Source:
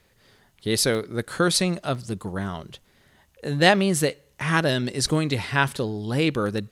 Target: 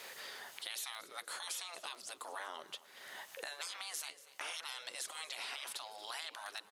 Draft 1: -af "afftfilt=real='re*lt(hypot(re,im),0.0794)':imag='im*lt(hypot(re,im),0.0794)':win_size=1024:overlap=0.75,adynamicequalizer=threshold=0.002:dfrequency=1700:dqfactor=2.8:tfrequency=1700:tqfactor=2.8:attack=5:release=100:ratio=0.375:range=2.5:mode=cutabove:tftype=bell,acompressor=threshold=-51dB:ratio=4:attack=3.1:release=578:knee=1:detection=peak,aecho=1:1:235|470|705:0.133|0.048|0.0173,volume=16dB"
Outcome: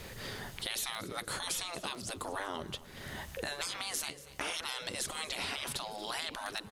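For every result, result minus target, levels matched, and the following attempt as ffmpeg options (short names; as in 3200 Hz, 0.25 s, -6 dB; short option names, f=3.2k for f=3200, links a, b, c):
compressor: peak gain reduction -6 dB; 500 Hz band +4.0 dB
-af "afftfilt=real='re*lt(hypot(re,im),0.0794)':imag='im*lt(hypot(re,im),0.0794)':win_size=1024:overlap=0.75,adynamicequalizer=threshold=0.002:dfrequency=1700:dqfactor=2.8:tfrequency=1700:tqfactor=2.8:attack=5:release=100:ratio=0.375:range=2.5:mode=cutabove:tftype=bell,acompressor=threshold=-59dB:ratio=4:attack=3.1:release=578:knee=1:detection=peak,aecho=1:1:235|470|705:0.133|0.048|0.0173,volume=16dB"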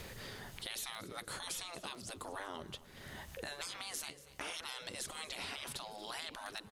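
500 Hz band +4.0 dB
-af "afftfilt=real='re*lt(hypot(re,im),0.0794)':imag='im*lt(hypot(re,im),0.0794)':win_size=1024:overlap=0.75,adynamicequalizer=threshold=0.002:dfrequency=1700:dqfactor=2.8:tfrequency=1700:tqfactor=2.8:attack=5:release=100:ratio=0.375:range=2.5:mode=cutabove:tftype=bell,highpass=660,acompressor=threshold=-59dB:ratio=4:attack=3.1:release=578:knee=1:detection=peak,aecho=1:1:235|470|705:0.133|0.048|0.0173,volume=16dB"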